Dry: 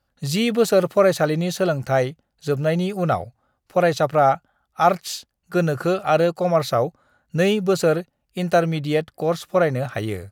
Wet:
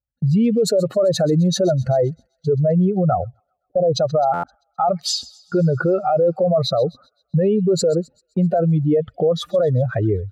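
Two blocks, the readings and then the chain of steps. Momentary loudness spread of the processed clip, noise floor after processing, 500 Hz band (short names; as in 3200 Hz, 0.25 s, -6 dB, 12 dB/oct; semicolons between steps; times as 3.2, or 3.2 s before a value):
7 LU, -74 dBFS, +1.5 dB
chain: spectral contrast raised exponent 2.3; gate -45 dBFS, range -26 dB; spectral gain 3.68–3.95, 750–10000 Hz -28 dB; in parallel at -1.5 dB: compressor, threshold -25 dBFS, peak gain reduction 13 dB; on the sum: limiter -14.5 dBFS, peak gain reduction 9.5 dB; on a send: thin delay 0.13 s, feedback 59%, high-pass 3200 Hz, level -18.5 dB; on the sum: stuck buffer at 4.33, samples 512, times 8; mismatched tape noise reduction decoder only; gain +4 dB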